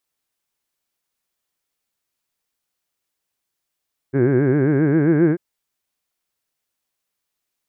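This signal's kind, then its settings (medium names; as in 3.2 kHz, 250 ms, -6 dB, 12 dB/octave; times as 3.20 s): formant vowel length 1.24 s, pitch 127 Hz, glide +4.5 st, vibrato 7.5 Hz, vibrato depth 1.5 st, F1 360 Hz, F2 1.6 kHz, F3 2.2 kHz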